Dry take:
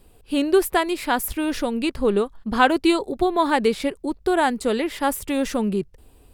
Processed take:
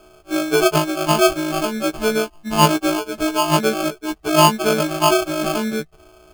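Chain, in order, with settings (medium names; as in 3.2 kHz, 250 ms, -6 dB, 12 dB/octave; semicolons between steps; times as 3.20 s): partials quantised in pitch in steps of 6 st; 4.33–5.30 s: dynamic bell 760 Hz, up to +6 dB, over -29 dBFS, Q 0.82; sample-and-hold 23×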